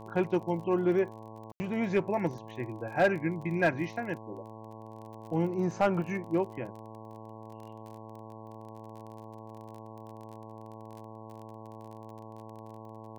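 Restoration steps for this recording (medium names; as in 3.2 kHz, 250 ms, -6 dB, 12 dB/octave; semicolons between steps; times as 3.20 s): clip repair -17.5 dBFS; de-click; de-hum 110.3 Hz, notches 10; room tone fill 1.52–1.60 s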